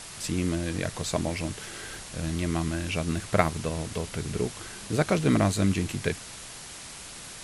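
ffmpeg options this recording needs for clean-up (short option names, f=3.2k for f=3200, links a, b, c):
-af "afwtdn=0.01"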